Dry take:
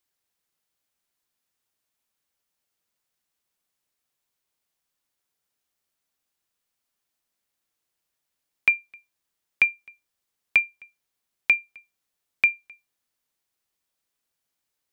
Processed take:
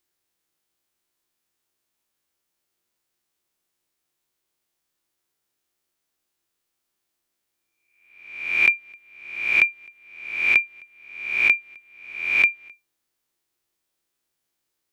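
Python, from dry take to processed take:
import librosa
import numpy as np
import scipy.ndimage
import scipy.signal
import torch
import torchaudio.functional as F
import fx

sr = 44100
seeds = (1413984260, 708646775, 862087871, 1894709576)

y = fx.spec_swells(x, sr, rise_s=0.83)
y = fx.peak_eq(y, sr, hz=350.0, db=8.5, octaves=0.28)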